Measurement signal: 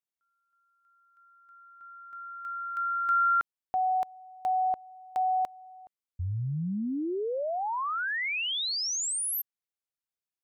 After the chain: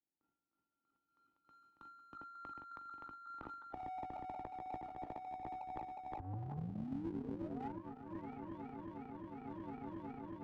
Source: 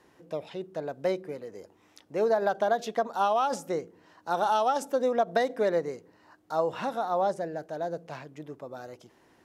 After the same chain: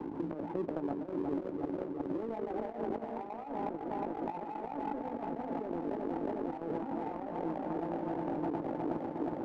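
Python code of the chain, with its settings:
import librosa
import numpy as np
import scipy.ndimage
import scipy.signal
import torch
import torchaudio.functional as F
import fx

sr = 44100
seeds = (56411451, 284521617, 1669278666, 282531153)

y = fx.reverse_delay_fb(x, sr, ms=181, feedback_pct=82, wet_db=-5.0)
y = fx.highpass(y, sr, hz=53.0, slope=6)
y = fx.peak_eq(y, sr, hz=1200.0, db=10.5, octaves=0.38)
y = fx.hpss(y, sr, part='percussive', gain_db=8)
y = fx.low_shelf(y, sr, hz=300.0, db=6.0)
y = fx.transient(y, sr, attack_db=9, sustain_db=-4)
y = fx.over_compress(y, sr, threshold_db=-27.0, ratio=-1.0)
y = fx.formant_cascade(y, sr, vowel='u')
y = fx.transient(y, sr, attack_db=-6, sustain_db=9)
y = fx.doubler(y, sr, ms=18.0, db=-9.0)
y = fx.power_curve(y, sr, exponent=1.4)
y = fx.band_squash(y, sr, depth_pct=100)
y = F.gain(torch.from_numpy(y), 2.5).numpy()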